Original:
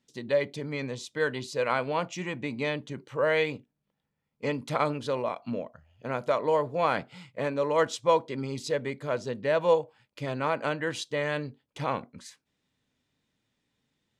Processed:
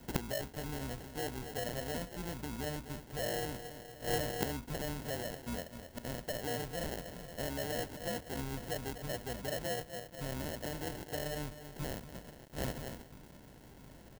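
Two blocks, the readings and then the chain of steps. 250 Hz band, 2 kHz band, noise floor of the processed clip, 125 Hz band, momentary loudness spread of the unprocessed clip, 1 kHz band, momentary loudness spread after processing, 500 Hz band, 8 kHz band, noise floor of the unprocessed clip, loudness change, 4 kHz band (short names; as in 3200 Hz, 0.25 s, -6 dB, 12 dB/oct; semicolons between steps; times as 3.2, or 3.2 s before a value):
-6.5 dB, -10.0 dB, -55 dBFS, -4.0 dB, 10 LU, -12.5 dB, 10 LU, -12.5 dB, +1.5 dB, -82 dBFS, -10.5 dB, -3.5 dB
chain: octaver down 2 oct, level -5 dB; low shelf 290 Hz +5 dB; on a send: feedback echo 0.244 s, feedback 46%, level -15 dB; on the sum: sample-rate reducer 1200 Hz, jitter 0%; in parallel at +2 dB: compressor, threshold -36 dBFS, peak gain reduction 18.5 dB; on the sum: limiter -17.5 dBFS, peak gain reduction 7.5 dB; flipped gate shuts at -33 dBFS, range -25 dB; high shelf 6200 Hz +7 dB; companded quantiser 6-bit; gain +11.5 dB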